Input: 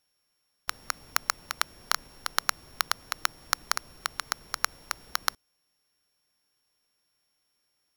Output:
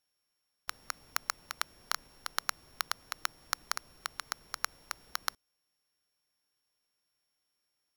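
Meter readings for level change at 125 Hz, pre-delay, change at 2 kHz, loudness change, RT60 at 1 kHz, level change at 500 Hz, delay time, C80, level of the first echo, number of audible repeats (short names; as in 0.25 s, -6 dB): -8.5 dB, none, -6.5 dB, -6.5 dB, none, -7.0 dB, none, none, none, none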